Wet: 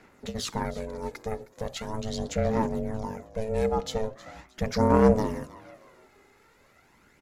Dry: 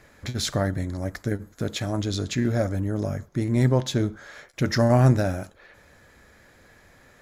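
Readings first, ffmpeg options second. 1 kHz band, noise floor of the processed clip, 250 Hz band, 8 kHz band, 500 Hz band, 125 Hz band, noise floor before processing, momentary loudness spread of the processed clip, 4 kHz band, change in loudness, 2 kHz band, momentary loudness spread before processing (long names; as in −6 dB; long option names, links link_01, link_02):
+2.0 dB, −61 dBFS, −3.0 dB, −5.5 dB, +0.5 dB, −10.0 dB, −55 dBFS, 16 LU, −6.0 dB, −3.5 dB, −6.0 dB, 12 LU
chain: -filter_complex "[0:a]aeval=exprs='val(0)*sin(2*PI*330*n/s)':channel_layout=same,asplit=4[link_01][link_02][link_03][link_04];[link_02]adelay=314,afreqshift=57,volume=-18dB[link_05];[link_03]adelay=628,afreqshift=114,volume=-27.4dB[link_06];[link_04]adelay=942,afreqshift=171,volume=-36.7dB[link_07];[link_01][link_05][link_06][link_07]amix=inputs=4:normalize=0,aphaser=in_gain=1:out_gain=1:delay=2.4:decay=0.44:speed=0.4:type=sinusoidal,volume=-4dB"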